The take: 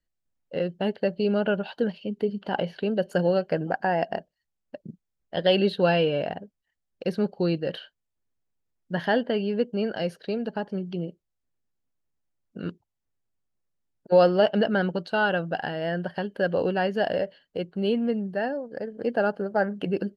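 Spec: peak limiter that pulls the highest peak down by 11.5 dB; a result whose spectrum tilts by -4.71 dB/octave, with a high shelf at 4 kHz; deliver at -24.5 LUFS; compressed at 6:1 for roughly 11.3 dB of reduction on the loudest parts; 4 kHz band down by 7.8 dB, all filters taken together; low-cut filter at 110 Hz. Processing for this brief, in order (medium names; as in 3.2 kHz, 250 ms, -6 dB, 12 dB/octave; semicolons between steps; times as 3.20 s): high-pass 110 Hz; treble shelf 4 kHz -9 dB; peaking EQ 4 kHz -7.5 dB; compression 6:1, threshold -26 dBFS; trim +12 dB; peak limiter -14.5 dBFS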